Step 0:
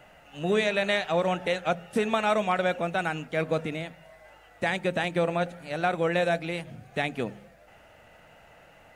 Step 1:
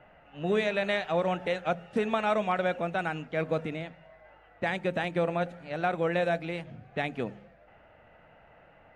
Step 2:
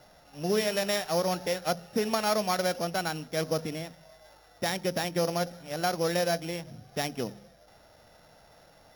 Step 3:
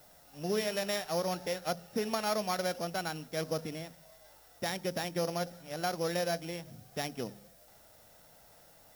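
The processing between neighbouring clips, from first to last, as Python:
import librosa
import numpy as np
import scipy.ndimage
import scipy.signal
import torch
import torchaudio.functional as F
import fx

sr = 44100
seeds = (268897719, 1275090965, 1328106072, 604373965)

y1 = fx.env_lowpass(x, sr, base_hz=2400.0, full_db=-24.5)
y1 = fx.high_shelf(y1, sr, hz=5100.0, db=-11.5)
y1 = y1 * librosa.db_to_amplitude(-2.0)
y2 = np.r_[np.sort(y1[:len(y1) // 8 * 8].reshape(-1, 8), axis=1).ravel(), y1[len(y1) // 8 * 8:]]
y3 = fx.dmg_noise_colour(y2, sr, seeds[0], colour='blue', level_db=-57.0)
y3 = y3 * librosa.db_to_amplitude(-5.0)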